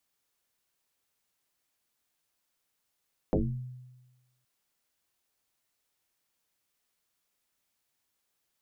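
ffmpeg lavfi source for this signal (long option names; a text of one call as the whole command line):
ffmpeg -f lavfi -i "aevalsrc='0.0891*pow(10,-3*t/1.17)*sin(2*PI*126*t+6*pow(10,-3*t/0.5)*sin(2*PI*0.79*126*t))':duration=1.12:sample_rate=44100" out.wav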